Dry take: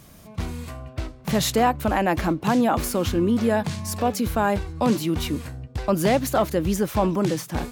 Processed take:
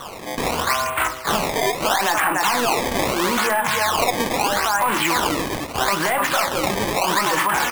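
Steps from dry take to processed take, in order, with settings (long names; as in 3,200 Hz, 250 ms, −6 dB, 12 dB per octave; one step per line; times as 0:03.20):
single-tap delay 293 ms −11 dB
mid-hump overdrive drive 18 dB, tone 1,000 Hz, clips at −7.5 dBFS
flat-topped bell 1,700 Hz +15.5 dB 2.3 octaves
downward compressor 16 to 1, threshold −13 dBFS, peak gain reduction 11 dB
wave folding −8 dBFS
convolution reverb RT60 0.30 s, pre-delay 6 ms, DRR 6.5 dB
brickwall limiter −14.5 dBFS, peak gain reduction 11 dB
sample-and-hold swept by an LFO 18×, swing 160% 0.77 Hz
low-shelf EQ 350 Hz −9.5 dB
level +5 dB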